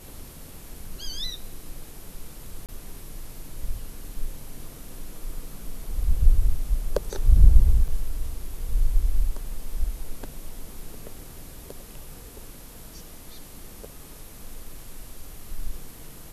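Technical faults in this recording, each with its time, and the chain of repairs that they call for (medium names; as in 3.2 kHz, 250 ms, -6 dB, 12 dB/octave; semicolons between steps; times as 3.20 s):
2.66–2.69 s: dropout 27 ms
7.88 s: dropout 5 ms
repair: interpolate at 2.66 s, 27 ms; interpolate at 7.88 s, 5 ms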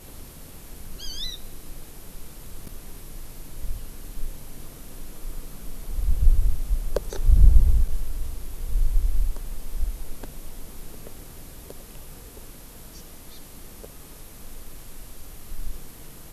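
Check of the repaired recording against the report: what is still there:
nothing left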